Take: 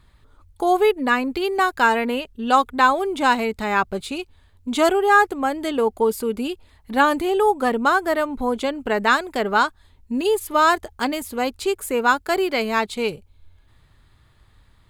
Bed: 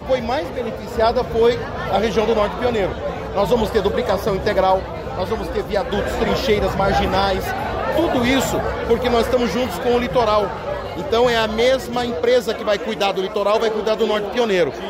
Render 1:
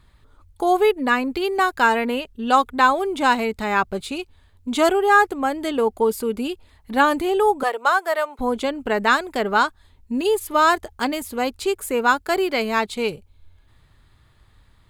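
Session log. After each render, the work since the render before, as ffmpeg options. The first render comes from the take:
-filter_complex "[0:a]asettb=1/sr,asplit=3[a][b][c];[a]atrim=end=7.634[d];[b]atrim=start=7.63:end=8.39,asetpts=PTS-STARTPTS,afade=t=in:d=0.004:c=qsin,afade=t=out:st=0.756:d=0.004:c=qsin,highpass=f=490:w=0.5412,highpass=f=490:w=1.3066[e];[c]atrim=start=8.386[f];[d][e]acrossfade=d=0.004:c1=hsin:c2=qsin[g];[g][f]acrossfade=d=0.004:c1=qsin:c2=hsin"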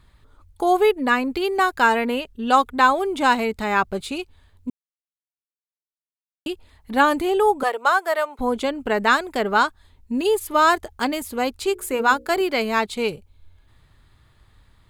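-filter_complex "[0:a]asettb=1/sr,asplit=3[a][b][c];[a]atrim=end=11.584[d];[b]atrim=start=11.58:end=12.41,asetpts=PTS-STARTPTS,afade=t=in:d=0.004:c=qsin,afade=t=out:st=0.826:d=0.004:c=qsin,bandreject=f=60:t=h:w=6,bandreject=f=120:t=h:w=6,bandreject=f=180:t=h:w=6,bandreject=f=240:t=h:w=6,bandreject=f=300:t=h:w=6,bandreject=f=360:t=h:w=6,bandreject=f=420:t=h:w=6,bandreject=f=480:t=h:w=6,bandreject=f=540:t=h:w=6[e];[c]atrim=start=12.406[f];[d][e]acrossfade=d=0.004:c1=hsin:c2=qsin[g];[g][f]acrossfade=d=0.004:c1=qsin:c2=hsin,asplit=3[h][i][j];[h]atrim=end=4.7,asetpts=PTS-STARTPTS,afade=t=out:st=4.696:d=0.004:c=hsin[k];[i]atrim=start=4.7:end=6.46,asetpts=PTS-STARTPTS,volume=0[l];[j]atrim=start=6.46,asetpts=PTS-STARTPTS,afade=t=in:d=0.004:c=hsin[m];[k][l][m]concat=n=3:v=0:a=1"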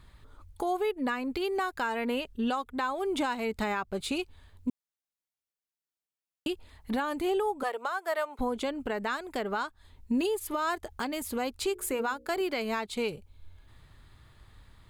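-af "acompressor=threshold=-26dB:ratio=2.5,alimiter=limit=-21dB:level=0:latency=1:release=411"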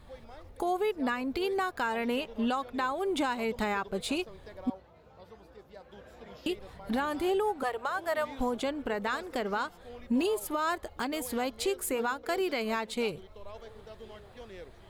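-filter_complex "[1:a]volume=-30dB[a];[0:a][a]amix=inputs=2:normalize=0"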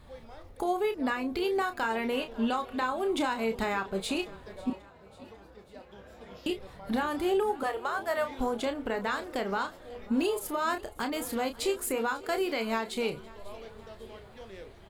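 -filter_complex "[0:a]asplit=2[a][b];[b]adelay=31,volume=-8dB[c];[a][c]amix=inputs=2:normalize=0,aecho=1:1:544|1088|1632|2176:0.0841|0.048|0.0273|0.0156"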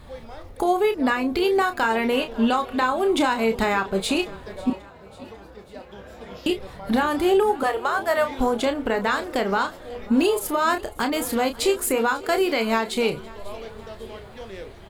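-af "volume=8.5dB"

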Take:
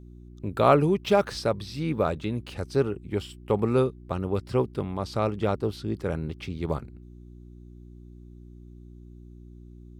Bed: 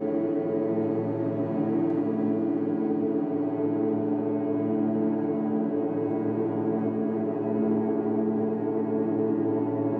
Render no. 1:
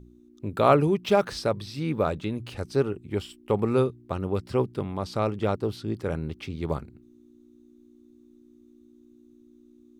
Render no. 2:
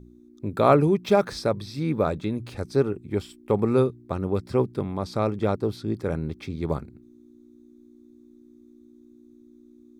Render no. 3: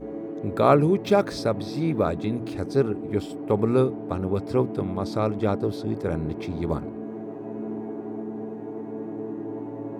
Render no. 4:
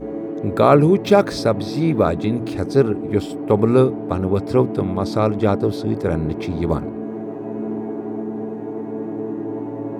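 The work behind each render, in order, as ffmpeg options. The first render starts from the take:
-af "bandreject=f=60:t=h:w=4,bandreject=f=120:t=h:w=4,bandreject=f=180:t=h:w=4"
-af "equalizer=f=240:t=o:w=2.3:g=3,bandreject=f=2.9k:w=5.4"
-filter_complex "[1:a]volume=-7.5dB[a];[0:a][a]amix=inputs=2:normalize=0"
-af "volume=6.5dB,alimiter=limit=-1dB:level=0:latency=1"

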